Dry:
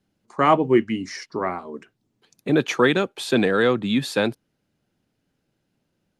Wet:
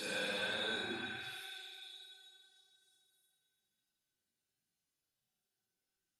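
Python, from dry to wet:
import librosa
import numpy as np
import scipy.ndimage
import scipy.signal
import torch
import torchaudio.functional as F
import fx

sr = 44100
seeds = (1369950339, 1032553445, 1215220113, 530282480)

p1 = librosa.effects.preemphasis(x, coef=0.9, zi=[0.0])
p2 = fx.env_lowpass_down(p1, sr, base_hz=2300.0, full_db=-18.5)
p3 = fx.comb_fb(p2, sr, f0_hz=380.0, decay_s=0.38, harmonics='all', damping=0.0, mix_pct=80)
p4 = fx.paulstretch(p3, sr, seeds[0], factor=7.9, window_s=0.05, from_s=4.16)
p5 = p4 + fx.echo_stepped(p4, sr, ms=302, hz=1000.0, octaves=0.7, feedback_pct=70, wet_db=-2.5, dry=0)
y = p5 * 10.0 ** (7.5 / 20.0)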